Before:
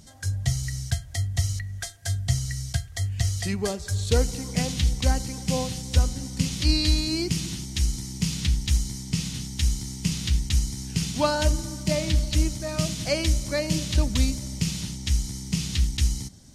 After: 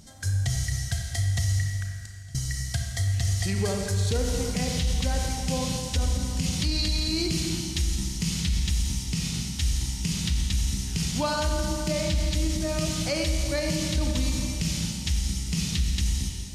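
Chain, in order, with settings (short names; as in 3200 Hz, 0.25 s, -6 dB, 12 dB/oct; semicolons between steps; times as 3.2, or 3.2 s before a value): 1.67–2.35 flipped gate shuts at -28 dBFS, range -25 dB; Schroeder reverb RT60 2.1 s, combs from 28 ms, DRR 2.5 dB; limiter -17 dBFS, peak gain reduction 8 dB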